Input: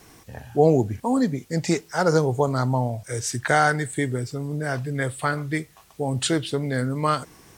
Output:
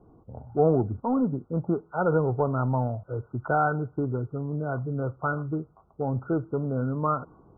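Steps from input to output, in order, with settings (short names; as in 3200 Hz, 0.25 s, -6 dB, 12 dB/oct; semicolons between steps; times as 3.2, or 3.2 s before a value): low-pass opened by the level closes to 620 Hz, open at -15 dBFS; in parallel at -6 dB: hard clip -22.5 dBFS, distortion -6 dB; on the sum: brick-wall FIR low-pass 1500 Hz; gain -5.5 dB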